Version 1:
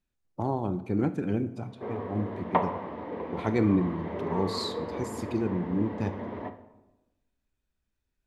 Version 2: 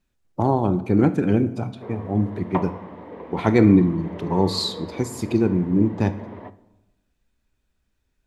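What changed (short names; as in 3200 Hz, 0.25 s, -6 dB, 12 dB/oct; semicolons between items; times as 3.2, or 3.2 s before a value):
speech +9.5 dB; background: send -8.0 dB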